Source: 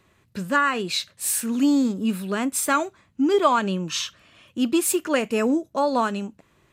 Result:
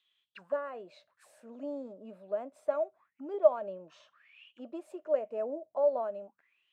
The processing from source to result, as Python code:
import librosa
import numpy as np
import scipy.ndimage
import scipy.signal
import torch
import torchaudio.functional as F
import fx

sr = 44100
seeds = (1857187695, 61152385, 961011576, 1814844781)

y = fx.auto_wah(x, sr, base_hz=610.0, top_hz=3400.0, q=13.0, full_db=-24.5, direction='down')
y = y * 10.0 ** (3.5 / 20.0)